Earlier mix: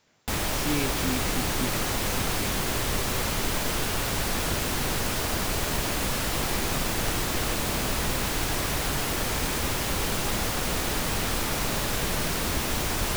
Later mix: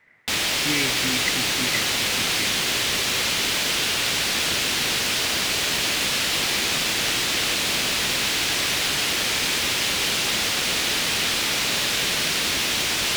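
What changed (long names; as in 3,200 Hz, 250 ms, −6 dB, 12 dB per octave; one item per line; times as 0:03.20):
speech: add low-pass with resonance 2,000 Hz, resonance Q 12
background: add meter weighting curve D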